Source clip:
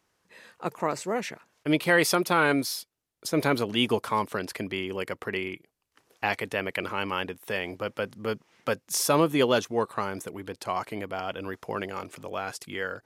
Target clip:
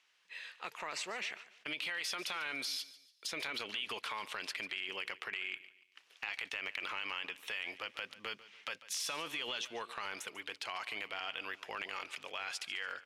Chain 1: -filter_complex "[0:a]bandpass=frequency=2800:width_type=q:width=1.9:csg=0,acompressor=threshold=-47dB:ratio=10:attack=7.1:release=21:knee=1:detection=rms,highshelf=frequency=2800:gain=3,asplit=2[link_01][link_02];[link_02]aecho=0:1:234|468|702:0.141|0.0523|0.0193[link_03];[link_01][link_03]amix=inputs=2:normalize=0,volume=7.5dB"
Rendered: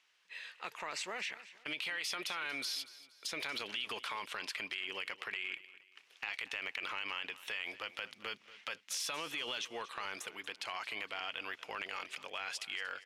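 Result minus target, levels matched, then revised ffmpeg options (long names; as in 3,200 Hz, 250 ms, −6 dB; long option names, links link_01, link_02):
echo 90 ms late
-filter_complex "[0:a]bandpass=frequency=2800:width_type=q:width=1.9:csg=0,acompressor=threshold=-47dB:ratio=10:attack=7.1:release=21:knee=1:detection=rms,highshelf=frequency=2800:gain=3,asplit=2[link_01][link_02];[link_02]aecho=0:1:144|288|432:0.141|0.0523|0.0193[link_03];[link_01][link_03]amix=inputs=2:normalize=0,volume=7.5dB"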